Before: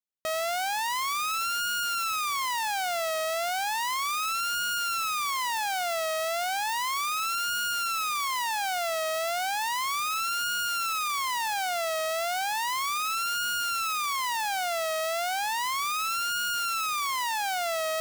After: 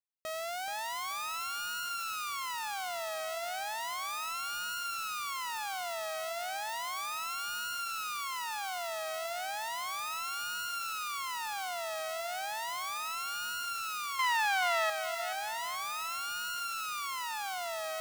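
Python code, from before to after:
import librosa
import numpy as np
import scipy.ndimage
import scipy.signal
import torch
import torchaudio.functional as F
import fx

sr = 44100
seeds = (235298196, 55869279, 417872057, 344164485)

p1 = fx.peak_eq(x, sr, hz=1700.0, db=12.0, octaves=2.5, at=(14.19, 14.9))
p2 = p1 + fx.echo_feedback(p1, sr, ms=428, feedback_pct=34, wet_db=-10.0, dry=0)
y = p2 * librosa.db_to_amplitude(-8.5)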